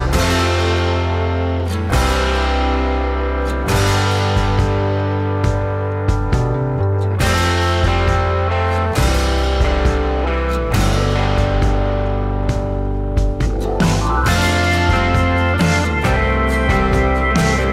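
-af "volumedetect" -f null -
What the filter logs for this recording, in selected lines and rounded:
mean_volume: -15.6 dB
max_volume: -2.5 dB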